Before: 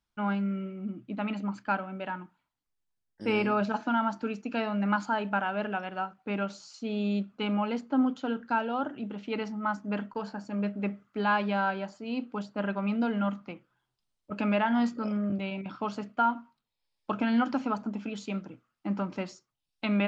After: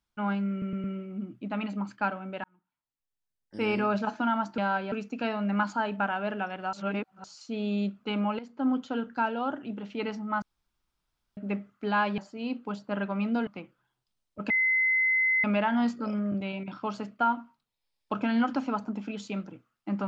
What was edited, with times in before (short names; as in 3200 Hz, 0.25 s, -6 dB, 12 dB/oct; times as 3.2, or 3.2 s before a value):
0.51 stutter 0.11 s, 4 plays
2.11–3.49 fade in
6.06–6.57 reverse
7.72–8.08 fade in, from -15 dB
9.75–10.7 room tone
11.51–11.85 move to 4.25
13.14–13.39 cut
14.42 add tone 2050 Hz -21.5 dBFS 0.94 s